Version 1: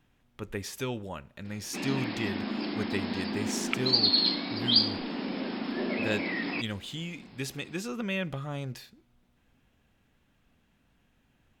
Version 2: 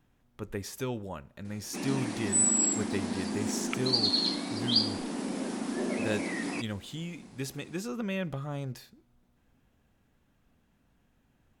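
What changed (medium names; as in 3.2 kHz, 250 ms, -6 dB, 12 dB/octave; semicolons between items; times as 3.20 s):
background: remove brick-wall FIR low-pass 5.4 kHz; master: add peaking EQ 2.8 kHz -6 dB 1.5 oct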